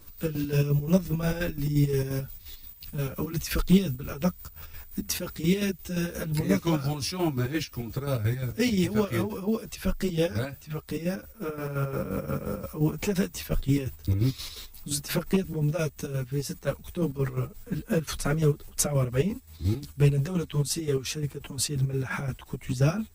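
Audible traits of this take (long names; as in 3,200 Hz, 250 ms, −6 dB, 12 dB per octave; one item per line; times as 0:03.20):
chopped level 5.7 Hz, depth 60%, duty 50%
a shimmering, thickened sound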